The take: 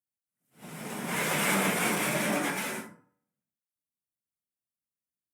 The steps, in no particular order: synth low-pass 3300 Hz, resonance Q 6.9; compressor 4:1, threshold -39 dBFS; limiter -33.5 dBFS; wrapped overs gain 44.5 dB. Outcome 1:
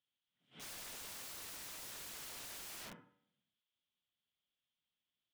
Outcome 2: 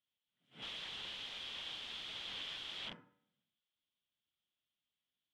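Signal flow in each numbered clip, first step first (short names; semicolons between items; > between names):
compressor > synth low-pass > limiter > wrapped overs; limiter > compressor > wrapped overs > synth low-pass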